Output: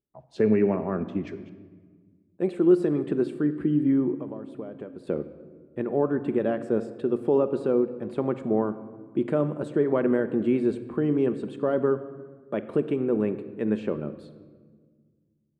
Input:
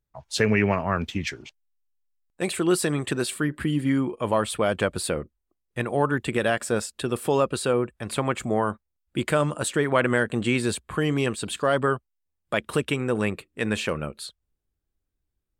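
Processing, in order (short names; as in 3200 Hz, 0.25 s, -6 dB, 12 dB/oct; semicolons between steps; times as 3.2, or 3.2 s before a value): 4.16–5.07 compressor 12:1, threshold -33 dBFS, peak gain reduction 16 dB; band-pass 320 Hz, Q 1.5; reverb RT60 1.6 s, pre-delay 5 ms, DRR 10 dB; gain +3.5 dB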